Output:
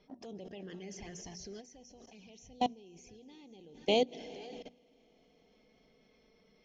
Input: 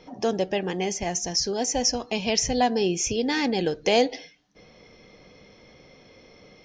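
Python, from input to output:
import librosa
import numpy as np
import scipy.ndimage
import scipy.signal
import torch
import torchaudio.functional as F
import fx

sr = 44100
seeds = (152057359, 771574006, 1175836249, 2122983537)

y = x + 10.0 ** (-18.5 / 20.0) * np.pad(x, (int(483 * sr / 1000.0), 0))[:len(x)]
y = fx.env_flanger(y, sr, rest_ms=5.2, full_db=-21.0)
y = scipy.signal.sosfilt(scipy.signal.butter(2, 4800.0, 'lowpass', fs=sr, output='sos'), y)
y = fx.high_shelf(y, sr, hz=3000.0, db=7.5)
y = fx.rev_plate(y, sr, seeds[0], rt60_s=4.7, hf_ratio=1.0, predelay_ms=115, drr_db=15.0)
y = fx.level_steps(y, sr, step_db=21)
y = fx.low_shelf(y, sr, hz=490.0, db=6.0)
y = fx.hum_notches(y, sr, base_hz=60, count=4)
y = fx.upward_expand(y, sr, threshold_db=-36.0, expansion=1.5, at=(1.6, 4.11), fade=0.02)
y = y * 10.0 ** (-7.0 / 20.0)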